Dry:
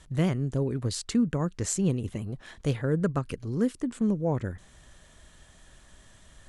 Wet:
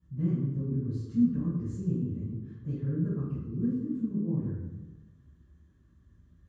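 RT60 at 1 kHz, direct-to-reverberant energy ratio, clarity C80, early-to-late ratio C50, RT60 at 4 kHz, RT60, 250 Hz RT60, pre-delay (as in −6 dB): 0.95 s, −14.0 dB, 2.5 dB, −2.0 dB, 0.80 s, 1.1 s, 1.4 s, 3 ms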